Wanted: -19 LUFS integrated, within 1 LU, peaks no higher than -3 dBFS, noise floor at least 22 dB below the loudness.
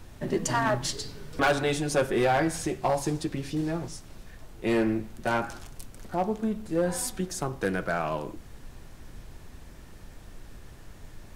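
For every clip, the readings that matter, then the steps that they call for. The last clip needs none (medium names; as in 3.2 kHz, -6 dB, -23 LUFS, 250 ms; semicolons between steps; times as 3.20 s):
clipped samples 0.7%; clipping level -18.0 dBFS; noise floor -48 dBFS; noise floor target -51 dBFS; loudness -28.5 LUFS; peak level -18.0 dBFS; loudness target -19.0 LUFS
-> clip repair -18 dBFS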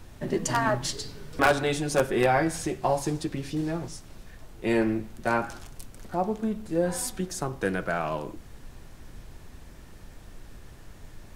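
clipped samples 0.0%; noise floor -48 dBFS; noise floor target -50 dBFS
-> noise print and reduce 6 dB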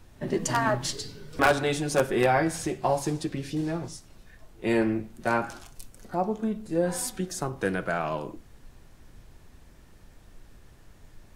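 noise floor -53 dBFS; loudness -28.0 LUFS; peak level -9.0 dBFS; loudness target -19.0 LUFS
-> trim +9 dB; peak limiter -3 dBFS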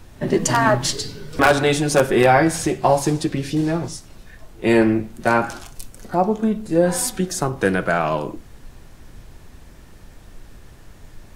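loudness -19.5 LUFS; peak level -3.0 dBFS; noise floor -44 dBFS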